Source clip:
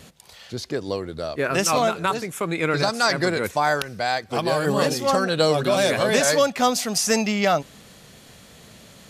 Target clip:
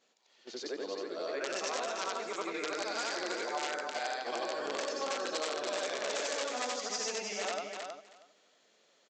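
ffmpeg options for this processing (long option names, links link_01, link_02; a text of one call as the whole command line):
ffmpeg -i in.wav -af "afftfilt=real='re':imag='-im':win_size=8192:overlap=0.75,aresample=16000,aeval=exprs='(mod(6.68*val(0)+1,2)-1)/6.68':channel_layout=same,aresample=44100,acompressor=threshold=-30dB:ratio=12,agate=range=-13dB:threshold=-39dB:ratio=16:detection=peak,highpass=frequency=310:width=0.5412,highpass=frequency=310:width=1.3066,aecho=1:1:318|636|954:0.531|0.0796|0.0119,volume=-2.5dB" out.wav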